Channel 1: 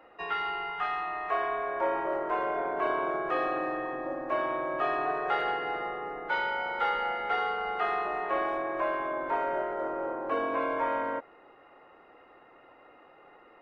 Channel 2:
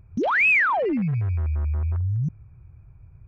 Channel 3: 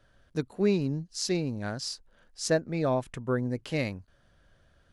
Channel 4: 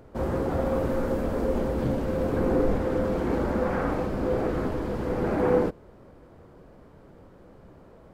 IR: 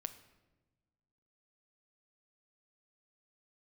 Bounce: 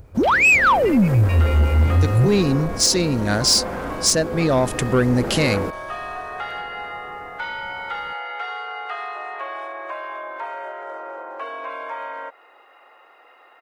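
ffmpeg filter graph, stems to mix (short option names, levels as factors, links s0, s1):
-filter_complex "[0:a]acompressor=threshold=0.02:ratio=3,highpass=620,adelay=1100,volume=0.473[s0];[1:a]acrossover=split=480[s1][s2];[s1]aeval=exprs='val(0)*(1-0.7/2+0.7/2*cos(2*PI*5*n/s))':c=same[s3];[s2]aeval=exprs='val(0)*(1-0.7/2-0.7/2*cos(2*PI*5*n/s))':c=same[s4];[s3][s4]amix=inputs=2:normalize=0,volume=1.19[s5];[2:a]dynaudnorm=f=170:g=7:m=3.76,adelay=1650,volume=0.531[s6];[3:a]aeval=exprs='0.316*sin(PI/2*2.24*val(0)/0.316)':c=same,volume=0.188[s7];[s0][s5][s6]amix=inputs=3:normalize=0,acontrast=67,alimiter=limit=0.251:level=0:latency=1:release=248,volume=1[s8];[s7][s8]amix=inputs=2:normalize=0,highshelf=f=3700:g=11,dynaudnorm=f=140:g=7:m=1.88,asoftclip=type=tanh:threshold=0.355"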